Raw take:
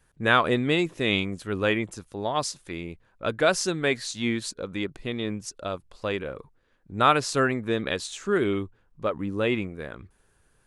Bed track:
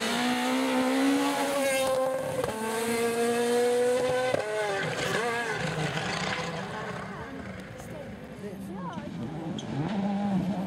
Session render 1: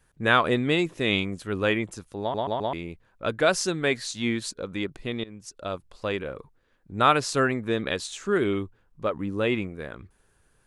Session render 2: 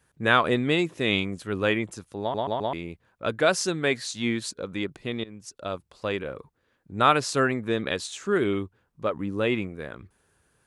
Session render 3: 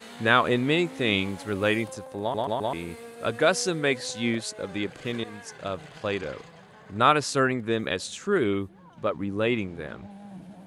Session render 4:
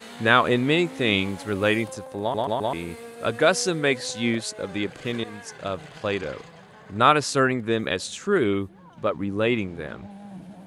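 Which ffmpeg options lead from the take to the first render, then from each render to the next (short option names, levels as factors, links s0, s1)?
-filter_complex "[0:a]asplit=6[s0][s1][s2][s3][s4][s5];[s0]atrim=end=2.342[s6];[s1]atrim=start=2.208:end=2.342[s7];[s2]atrim=start=2.208:end=2.342[s8];[s3]atrim=start=2.208:end=2.342[s9];[s4]atrim=start=2.728:end=5.24,asetpts=PTS-STARTPTS,afade=t=out:st=2.508:d=0.004:c=hsin:silence=0.1[s10];[s5]atrim=start=5.24,asetpts=PTS-STARTPTS,afade=t=in:d=0.48:silence=0.1[s11];[s6][s7]acrossfade=d=0.004:c1=hsin:c2=hsin[s12];[s12][s8]acrossfade=d=0.004:c1=hsin:c2=hsin[s13];[s13][s9]acrossfade=d=0.004:c1=hsin:c2=hsin[s14];[s10][s11]concat=n=2:v=0:a=1[s15];[s14][s15]acrossfade=d=0.004:c1=hsin:c2=hsin"
-af "highpass=68"
-filter_complex "[1:a]volume=0.168[s0];[0:a][s0]amix=inputs=2:normalize=0"
-af "volume=1.33"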